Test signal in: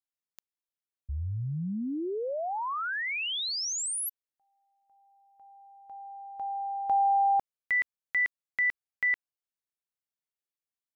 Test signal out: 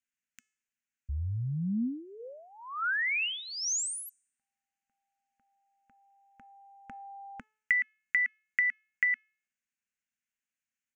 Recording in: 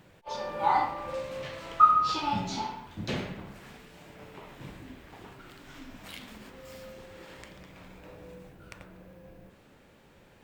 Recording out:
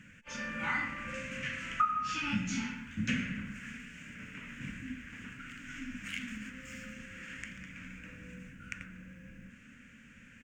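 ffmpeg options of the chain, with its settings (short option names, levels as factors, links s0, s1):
-af "firequalizer=gain_entry='entry(160,0);entry(240,10);entry(360,-17);entry(500,-10);entry(750,-24);entry(1500,8);entry(2700,8);entry(3900,-12);entry(6600,7);entry(11000,-11)':delay=0.05:min_phase=1,acompressor=threshold=0.0316:ratio=3:attack=32:release=654:knee=1:detection=peak,bandreject=f=431.7:t=h:w=4,bandreject=f=863.4:t=h:w=4,bandreject=f=1295.1:t=h:w=4,bandreject=f=1726.8:t=h:w=4,bandreject=f=2158.5:t=h:w=4,bandreject=f=2590.2:t=h:w=4,bandreject=f=3021.9:t=h:w=4,bandreject=f=3453.6:t=h:w=4,bandreject=f=3885.3:t=h:w=4,bandreject=f=4317:t=h:w=4,bandreject=f=4748.7:t=h:w=4,bandreject=f=5180.4:t=h:w=4,bandreject=f=5612.1:t=h:w=4,bandreject=f=6043.8:t=h:w=4,bandreject=f=6475.5:t=h:w=4,bandreject=f=6907.2:t=h:w=4,bandreject=f=7338.9:t=h:w=4,bandreject=f=7770.6:t=h:w=4,bandreject=f=8202.3:t=h:w=4,bandreject=f=8634:t=h:w=4,bandreject=f=9065.7:t=h:w=4"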